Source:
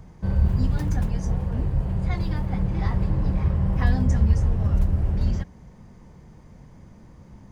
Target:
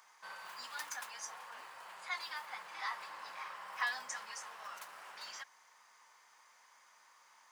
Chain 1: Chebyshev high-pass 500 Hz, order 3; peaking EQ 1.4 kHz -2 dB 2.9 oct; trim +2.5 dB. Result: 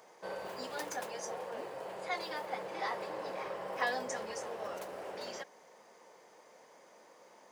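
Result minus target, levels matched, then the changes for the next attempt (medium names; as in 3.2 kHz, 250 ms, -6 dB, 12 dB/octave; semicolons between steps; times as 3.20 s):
500 Hz band +17.0 dB
change: Chebyshev high-pass 1.1 kHz, order 3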